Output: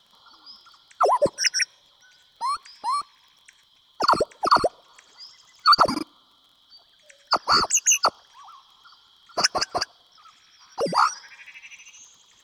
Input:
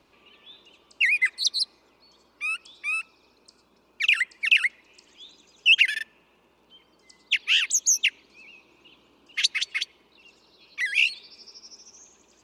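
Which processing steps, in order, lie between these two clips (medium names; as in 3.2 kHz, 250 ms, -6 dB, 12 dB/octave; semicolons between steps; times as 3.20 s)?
four frequency bands reordered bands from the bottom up 2413; in parallel at -8 dB: saturation -15 dBFS, distortion -15 dB; on the sum: crackle 17 per s -44 dBFS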